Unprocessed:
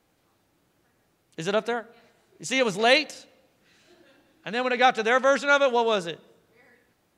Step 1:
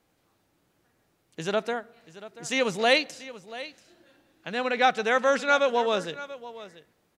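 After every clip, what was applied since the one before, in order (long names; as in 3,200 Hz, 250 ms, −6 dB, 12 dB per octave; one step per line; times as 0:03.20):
single-tap delay 685 ms −16.5 dB
level −2 dB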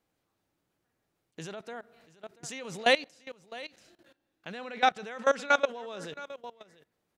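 output level in coarse steps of 20 dB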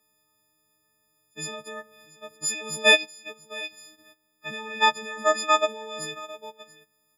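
every partial snapped to a pitch grid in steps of 6 semitones
level +1 dB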